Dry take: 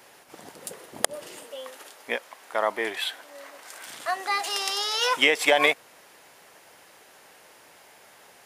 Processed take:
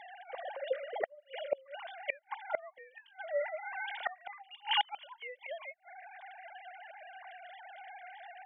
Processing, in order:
three sine waves on the formant tracks
gate with flip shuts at −27 dBFS, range −34 dB
notch comb filter 1,300 Hz
level +9.5 dB

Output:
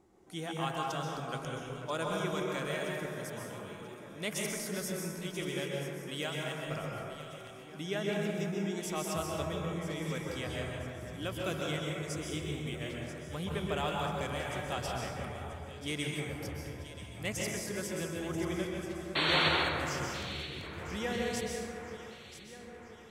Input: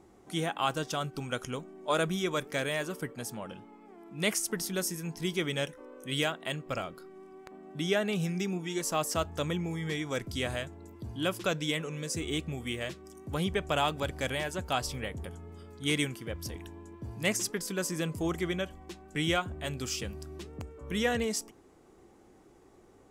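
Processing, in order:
sound drawn into the spectrogram noise, 0:19.15–0:19.49, 250–4,500 Hz −22 dBFS
delay that swaps between a low-pass and a high-pass 492 ms, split 2,100 Hz, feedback 69%, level −9 dB
dense smooth reverb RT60 1.6 s, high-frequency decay 0.5×, pre-delay 115 ms, DRR −1.5 dB
level −8 dB

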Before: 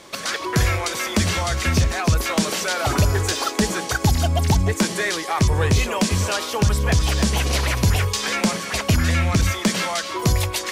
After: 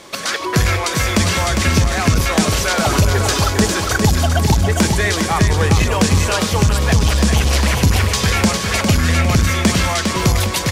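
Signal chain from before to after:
on a send: repeating echo 404 ms, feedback 42%, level −5.5 dB
on the sum: saturating transformer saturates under 140 Hz
level +4.5 dB

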